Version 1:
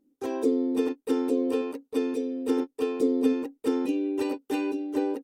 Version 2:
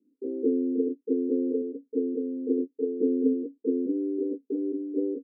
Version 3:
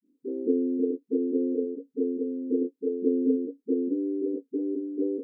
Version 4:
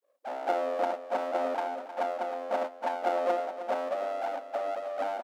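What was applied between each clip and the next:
Chebyshev band-pass 180–490 Hz, order 4
phase dispersion highs, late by 57 ms, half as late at 320 Hz
full-wave rectifier; brick-wall FIR high-pass 230 Hz; feedback delay 312 ms, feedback 49%, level -11.5 dB; trim +3 dB

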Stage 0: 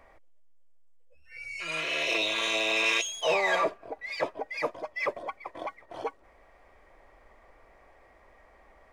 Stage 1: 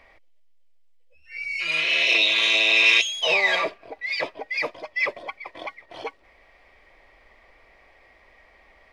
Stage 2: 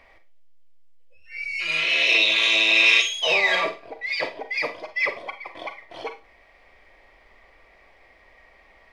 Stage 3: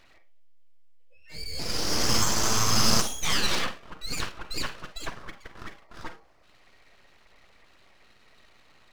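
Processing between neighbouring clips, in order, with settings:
high-order bell 3.2 kHz +10 dB
Schroeder reverb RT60 0.3 s, combs from 33 ms, DRR 8 dB
time-frequency box 4.97–6.44 s, 1.4–4 kHz -13 dB; full-wave rectifier; trim -2 dB

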